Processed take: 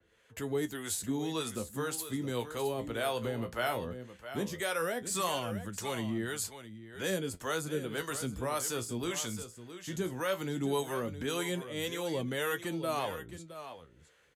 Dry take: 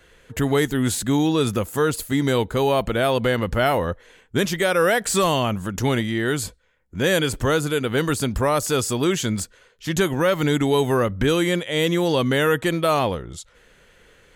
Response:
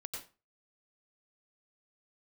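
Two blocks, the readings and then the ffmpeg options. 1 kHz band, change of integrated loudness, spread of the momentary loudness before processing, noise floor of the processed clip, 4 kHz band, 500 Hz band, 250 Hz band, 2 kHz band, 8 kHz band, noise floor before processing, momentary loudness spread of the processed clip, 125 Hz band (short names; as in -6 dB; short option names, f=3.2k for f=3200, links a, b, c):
-13.0 dB, -13.5 dB, 8 LU, -60 dBFS, -12.5 dB, -14.0 dB, -14.5 dB, -13.5 dB, -9.0 dB, -55 dBFS, 10 LU, -16.0 dB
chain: -filter_complex "[0:a]highpass=58,acrossover=split=200|990|2200[a][b][c][d];[a]alimiter=level_in=2dB:limit=-24dB:level=0:latency=1,volume=-2dB[e];[e][b][c][d]amix=inputs=4:normalize=0,acrossover=split=500[f][g];[f]aeval=exprs='val(0)*(1-0.7/2+0.7/2*cos(2*PI*1.8*n/s))':c=same[h];[g]aeval=exprs='val(0)*(1-0.7/2-0.7/2*cos(2*PI*1.8*n/s))':c=same[i];[h][i]amix=inputs=2:normalize=0,aecho=1:1:666:0.266,flanger=delay=9:depth=8.5:regen=51:speed=0.16:shape=sinusoidal,aresample=32000,aresample=44100,adynamicequalizer=threshold=0.00562:dfrequency=4700:dqfactor=0.7:tfrequency=4700:tqfactor=0.7:attack=5:release=100:ratio=0.375:range=3:mode=boostabove:tftype=highshelf,volume=-7dB"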